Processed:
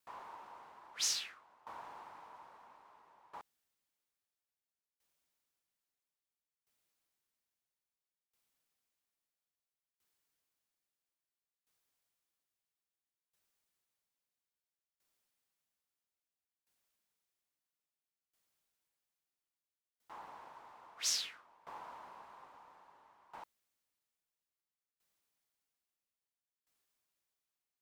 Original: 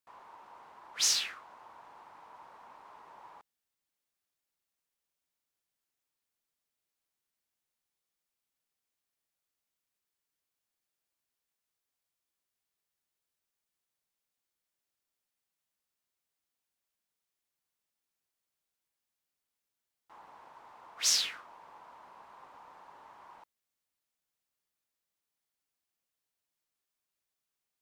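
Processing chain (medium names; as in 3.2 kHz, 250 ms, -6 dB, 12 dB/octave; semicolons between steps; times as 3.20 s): sawtooth tremolo in dB decaying 0.6 Hz, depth 20 dB; trim +6 dB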